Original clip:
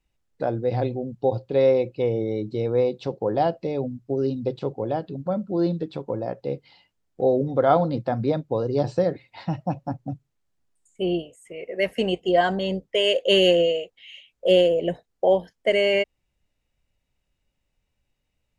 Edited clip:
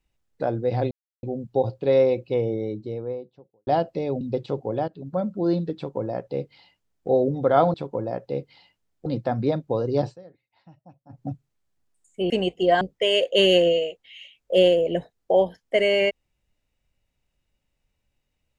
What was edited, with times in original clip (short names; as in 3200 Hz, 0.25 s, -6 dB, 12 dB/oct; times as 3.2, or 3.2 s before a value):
0.91 insert silence 0.32 s
1.91–3.35 studio fade out
3.89–4.34 cut
5.01–5.29 fade in, from -14 dB
5.89–7.21 copy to 7.87
8.83–10.04 dip -23.5 dB, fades 0.14 s
11.11–11.96 cut
12.47–12.74 cut